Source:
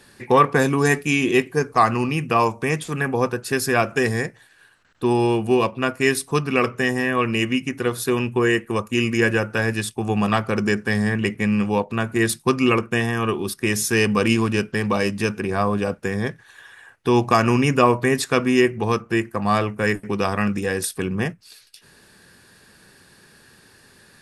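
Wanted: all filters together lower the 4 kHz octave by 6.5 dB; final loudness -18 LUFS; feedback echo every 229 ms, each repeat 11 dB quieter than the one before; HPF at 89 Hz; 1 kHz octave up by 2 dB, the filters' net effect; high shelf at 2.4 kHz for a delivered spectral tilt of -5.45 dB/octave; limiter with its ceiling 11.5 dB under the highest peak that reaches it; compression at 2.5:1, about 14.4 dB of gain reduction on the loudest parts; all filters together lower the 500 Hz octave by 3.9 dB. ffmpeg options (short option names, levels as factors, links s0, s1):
-af "highpass=89,equalizer=f=500:t=o:g=-6,equalizer=f=1000:t=o:g=5,highshelf=f=2400:g=-4,equalizer=f=4000:t=o:g=-6.5,acompressor=threshold=0.0251:ratio=2.5,alimiter=level_in=1.12:limit=0.0631:level=0:latency=1,volume=0.891,aecho=1:1:229|458|687:0.282|0.0789|0.0221,volume=7.5"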